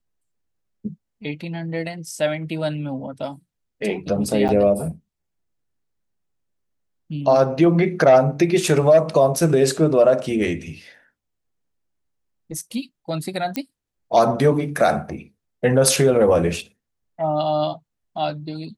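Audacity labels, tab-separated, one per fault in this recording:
4.480000	4.490000	drop-out 8.7 ms
13.560000	13.560000	click −10 dBFS

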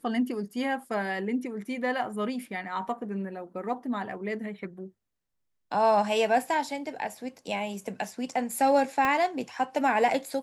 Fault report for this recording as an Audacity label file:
9.050000	9.050000	click −14 dBFS

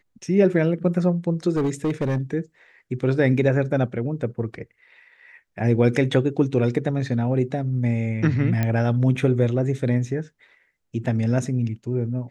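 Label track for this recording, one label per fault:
1.520000	2.180000	clipping −18.5 dBFS
8.630000	8.630000	click −11 dBFS

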